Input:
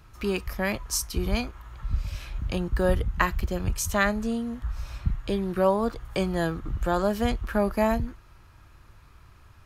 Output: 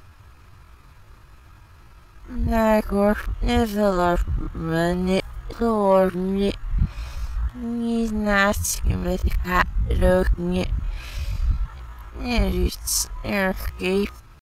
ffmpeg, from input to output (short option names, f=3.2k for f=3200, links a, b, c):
-af "areverse,atempo=0.67,acontrast=86,volume=-2dB"